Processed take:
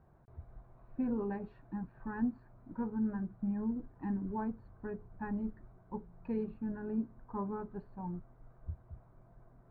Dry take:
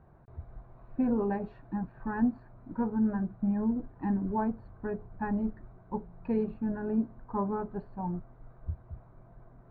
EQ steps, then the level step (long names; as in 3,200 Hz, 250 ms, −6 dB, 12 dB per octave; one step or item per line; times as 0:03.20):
dynamic equaliser 670 Hz, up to −6 dB, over −51 dBFS, Q 2.5
−6.0 dB